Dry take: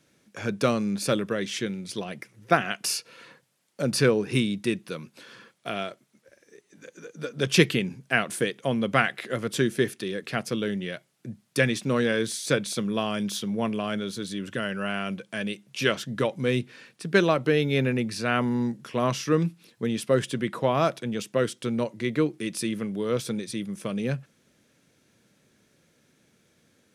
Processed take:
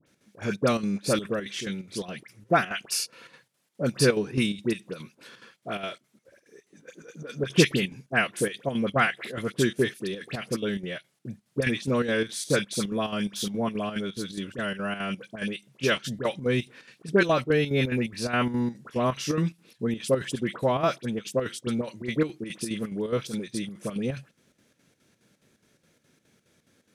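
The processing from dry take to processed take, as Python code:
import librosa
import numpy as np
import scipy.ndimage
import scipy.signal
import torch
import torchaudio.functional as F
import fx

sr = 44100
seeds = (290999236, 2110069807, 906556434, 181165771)

y = fx.dispersion(x, sr, late='highs', ms=65.0, hz=1700.0)
y = fx.chopper(y, sr, hz=4.8, depth_pct=60, duty_pct=70)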